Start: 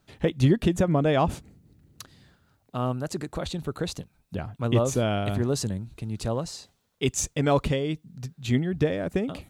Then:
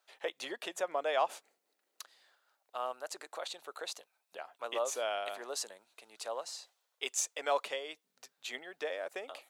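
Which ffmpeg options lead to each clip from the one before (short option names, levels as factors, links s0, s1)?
-af "highpass=f=570:w=0.5412,highpass=f=570:w=1.3066,volume=0.562"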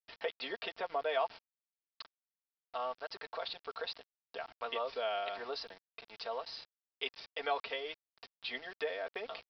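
-af "aecho=1:1:4.4:0.73,acompressor=threshold=0.00316:ratio=1.5,aresample=11025,aeval=exprs='val(0)*gte(abs(val(0)),0.00188)':c=same,aresample=44100,volume=1.68"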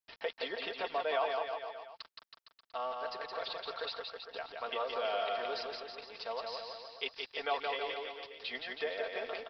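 -af "aecho=1:1:170|323|460.7|584.6|696.2:0.631|0.398|0.251|0.158|0.1"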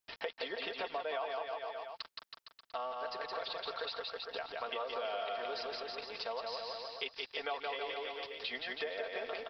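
-af "acompressor=threshold=0.00708:ratio=3,volume=1.78"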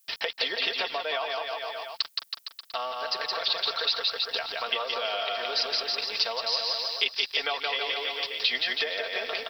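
-af "crystalizer=i=7.5:c=0,volume=1.5"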